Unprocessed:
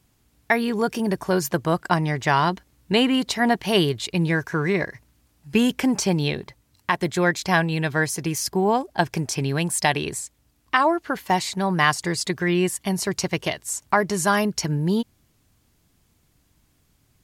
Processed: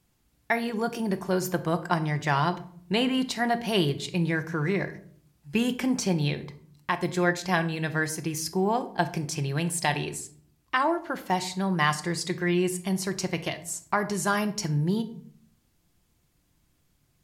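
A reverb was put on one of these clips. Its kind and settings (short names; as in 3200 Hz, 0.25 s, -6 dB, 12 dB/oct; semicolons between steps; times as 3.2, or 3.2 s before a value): shoebox room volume 730 m³, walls furnished, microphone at 0.86 m; gain -6 dB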